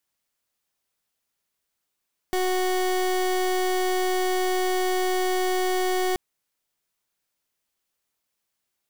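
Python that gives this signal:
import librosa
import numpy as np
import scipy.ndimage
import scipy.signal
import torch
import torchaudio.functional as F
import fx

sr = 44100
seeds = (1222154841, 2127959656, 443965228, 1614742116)

y = fx.pulse(sr, length_s=3.83, hz=369.0, level_db=-23.5, duty_pct=28)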